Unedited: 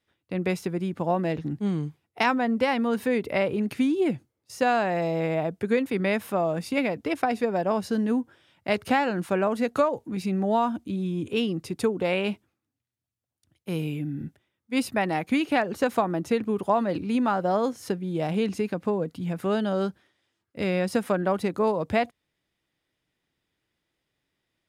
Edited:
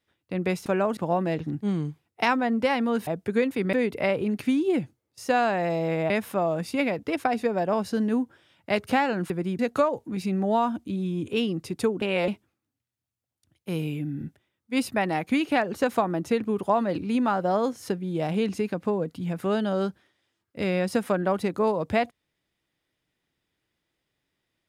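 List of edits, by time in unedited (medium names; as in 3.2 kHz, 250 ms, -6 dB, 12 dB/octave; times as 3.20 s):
0.66–0.95 s: swap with 9.28–9.59 s
5.42–6.08 s: move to 3.05 s
12.02–12.28 s: reverse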